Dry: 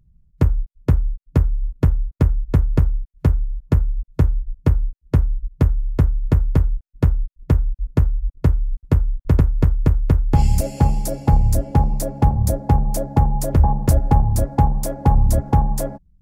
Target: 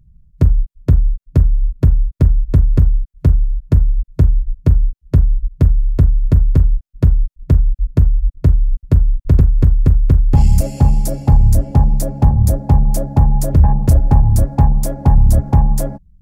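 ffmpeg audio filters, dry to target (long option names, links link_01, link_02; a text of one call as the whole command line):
ffmpeg -i in.wav -af "acontrast=90,bass=frequency=250:gain=7,treble=frequency=4000:gain=2,volume=-6.5dB" out.wav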